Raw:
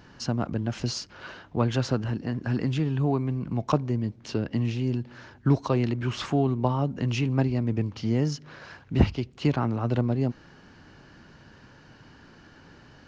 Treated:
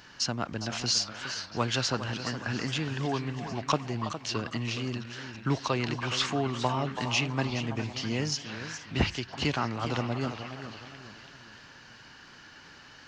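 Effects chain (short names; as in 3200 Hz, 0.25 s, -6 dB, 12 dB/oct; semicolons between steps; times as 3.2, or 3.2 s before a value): tilt shelf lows -8 dB; delay with a stepping band-pass 0.329 s, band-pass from 880 Hz, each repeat 0.7 oct, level -7 dB; warbling echo 0.415 s, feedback 40%, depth 151 cents, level -11 dB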